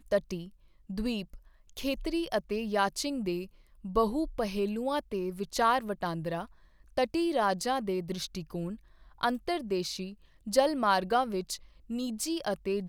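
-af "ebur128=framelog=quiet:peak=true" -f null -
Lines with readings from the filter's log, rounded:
Integrated loudness:
  I:         -31.6 LUFS
  Threshold: -42.0 LUFS
Loudness range:
  LRA:         2.5 LU
  Threshold: -51.8 LUFS
  LRA low:   -33.4 LUFS
  LRA high:  -30.9 LUFS
True peak:
  Peak:      -10.9 dBFS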